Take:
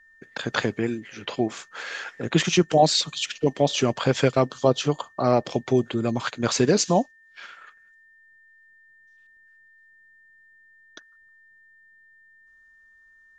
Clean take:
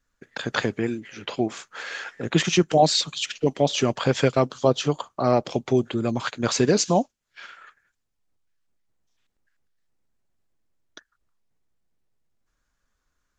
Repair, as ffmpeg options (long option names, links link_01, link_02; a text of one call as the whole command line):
ffmpeg -i in.wav -af "bandreject=frequency=1800:width=30" out.wav